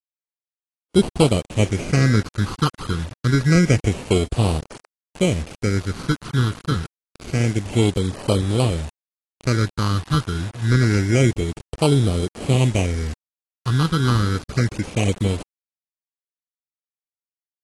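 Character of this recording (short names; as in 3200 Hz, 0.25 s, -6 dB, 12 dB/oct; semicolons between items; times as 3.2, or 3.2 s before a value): aliases and images of a low sample rate 1800 Hz, jitter 0%; phasing stages 6, 0.27 Hz, lowest notch 600–1800 Hz; a quantiser's noise floor 6-bit, dither none; AAC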